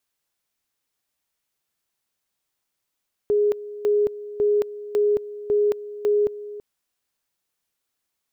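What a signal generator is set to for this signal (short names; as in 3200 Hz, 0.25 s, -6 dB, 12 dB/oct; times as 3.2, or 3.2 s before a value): two-level tone 415 Hz -16 dBFS, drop 16 dB, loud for 0.22 s, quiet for 0.33 s, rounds 6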